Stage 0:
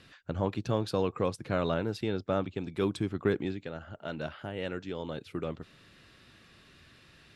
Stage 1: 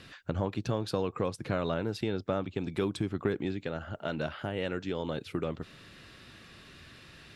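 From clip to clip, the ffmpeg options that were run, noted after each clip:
-af "acompressor=threshold=-35dB:ratio=2.5,volume=5.5dB"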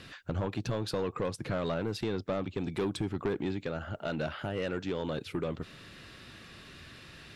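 -af "asoftclip=type=tanh:threshold=-26.5dB,volume=2dB"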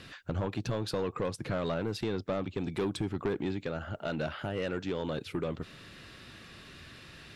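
-af anull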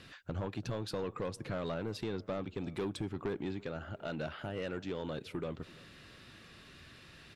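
-filter_complex "[0:a]asplit=2[a][b];[b]adelay=336,lowpass=f=2.5k:p=1,volume=-22.5dB,asplit=2[c][d];[d]adelay=336,lowpass=f=2.5k:p=1,volume=0.51,asplit=2[e][f];[f]adelay=336,lowpass=f=2.5k:p=1,volume=0.51[g];[a][c][e][g]amix=inputs=4:normalize=0,volume=-5dB"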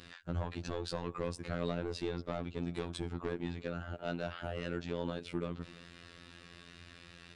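-af "afftfilt=real='hypot(re,im)*cos(PI*b)':imag='0':win_size=2048:overlap=0.75,aresample=22050,aresample=44100,volume=4dB"

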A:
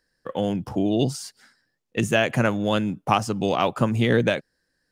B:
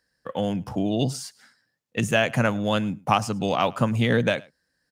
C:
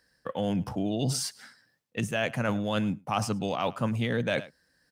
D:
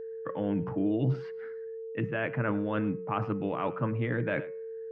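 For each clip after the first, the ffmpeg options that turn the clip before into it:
-af "highpass=50,equalizer=f=360:t=o:w=0.52:g=-6.5,aecho=1:1:106:0.0631"
-af "bandreject=f=6.9k:w=16,areverse,acompressor=threshold=-31dB:ratio=6,areverse,volume=5dB"
-af "highpass=120,equalizer=f=130:t=q:w=4:g=5,equalizer=f=230:t=q:w=4:g=-6,equalizer=f=320:t=q:w=4:g=7,equalizer=f=460:t=q:w=4:g=-5,equalizer=f=730:t=q:w=4:g=-7,lowpass=f=2.1k:w=0.5412,lowpass=f=2.1k:w=1.3066,bandreject=f=182.4:t=h:w=4,bandreject=f=364.8:t=h:w=4,bandreject=f=547.2:t=h:w=4,bandreject=f=729.6:t=h:w=4,bandreject=f=912:t=h:w=4,bandreject=f=1.0944k:t=h:w=4,bandreject=f=1.2768k:t=h:w=4,bandreject=f=1.4592k:t=h:w=4,bandreject=f=1.6416k:t=h:w=4,bandreject=f=1.824k:t=h:w=4,bandreject=f=2.0064k:t=h:w=4,bandreject=f=2.1888k:t=h:w=4,bandreject=f=2.3712k:t=h:w=4,bandreject=f=2.5536k:t=h:w=4,aeval=exprs='val(0)+0.0141*sin(2*PI*450*n/s)':c=same"

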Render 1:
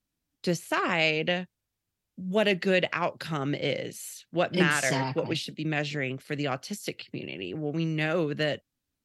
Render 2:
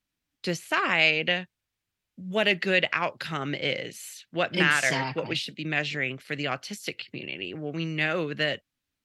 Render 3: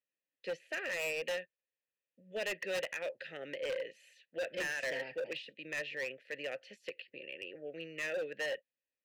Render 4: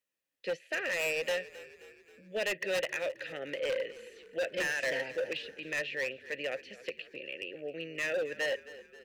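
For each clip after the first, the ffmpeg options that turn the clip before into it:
-af "equalizer=f=2.3k:w=0.55:g=8,volume=-3dB"
-filter_complex "[0:a]asplit=3[a][b][c];[a]bandpass=f=530:t=q:w=8,volume=0dB[d];[b]bandpass=f=1.84k:t=q:w=8,volume=-6dB[e];[c]bandpass=f=2.48k:t=q:w=8,volume=-9dB[f];[d][e][f]amix=inputs=3:normalize=0,asoftclip=type=hard:threshold=-34dB,volume=1dB"
-filter_complex "[0:a]asplit=6[a][b][c][d][e][f];[b]adelay=266,afreqshift=-33,volume=-17.5dB[g];[c]adelay=532,afreqshift=-66,volume=-22.9dB[h];[d]adelay=798,afreqshift=-99,volume=-28.2dB[i];[e]adelay=1064,afreqshift=-132,volume=-33.6dB[j];[f]adelay=1330,afreqshift=-165,volume=-38.9dB[k];[a][g][h][i][j][k]amix=inputs=6:normalize=0,volume=4.5dB"

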